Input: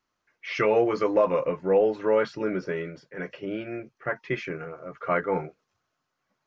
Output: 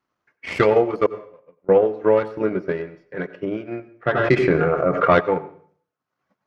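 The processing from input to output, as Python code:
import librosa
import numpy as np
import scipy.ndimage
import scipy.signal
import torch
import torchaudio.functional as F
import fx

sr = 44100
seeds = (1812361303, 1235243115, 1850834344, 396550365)

y = fx.tracing_dist(x, sr, depth_ms=0.093)
y = scipy.signal.sosfilt(scipy.signal.butter(2, 66.0, 'highpass', fs=sr, output='sos'), y)
y = fx.high_shelf(y, sr, hz=2900.0, db=-11.5)
y = fx.transient(y, sr, attack_db=6, sustain_db=-10)
y = fx.gate_flip(y, sr, shuts_db=-33.0, range_db=-30, at=(1.06, 1.69))
y = fx.rev_plate(y, sr, seeds[0], rt60_s=0.52, hf_ratio=0.9, predelay_ms=75, drr_db=15.5)
y = fx.env_flatten(y, sr, amount_pct=70, at=(4.12, 5.19), fade=0.02)
y = F.gain(torch.from_numpy(y), 4.0).numpy()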